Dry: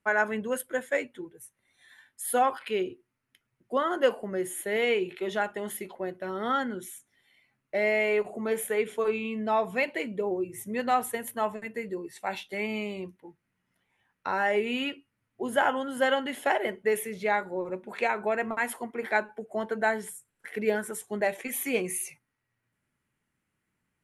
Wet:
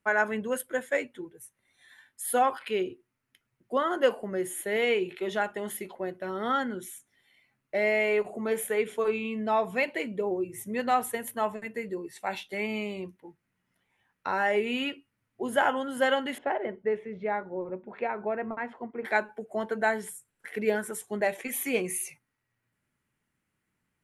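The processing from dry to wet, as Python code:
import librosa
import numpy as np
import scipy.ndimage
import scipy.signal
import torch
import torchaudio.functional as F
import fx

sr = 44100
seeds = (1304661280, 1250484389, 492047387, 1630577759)

y = fx.spacing_loss(x, sr, db_at_10k=44, at=(16.38, 19.05))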